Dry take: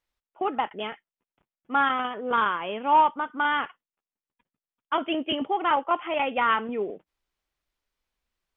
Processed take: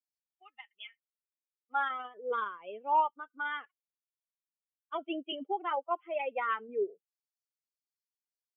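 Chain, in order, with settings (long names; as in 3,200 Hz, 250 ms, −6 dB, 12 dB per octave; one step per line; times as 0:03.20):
spectral dynamics exaggerated over time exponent 2
high-pass filter sweep 2,500 Hz → 410 Hz, 0:01.09–0:01.92
level −7.5 dB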